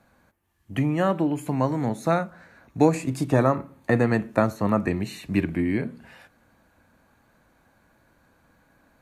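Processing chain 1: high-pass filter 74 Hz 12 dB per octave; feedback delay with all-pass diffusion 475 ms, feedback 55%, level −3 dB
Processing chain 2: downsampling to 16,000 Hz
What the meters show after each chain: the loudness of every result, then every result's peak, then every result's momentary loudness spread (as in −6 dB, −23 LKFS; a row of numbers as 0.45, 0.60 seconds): −23.0, −24.5 LKFS; −4.5, −4.5 dBFS; 14, 8 LU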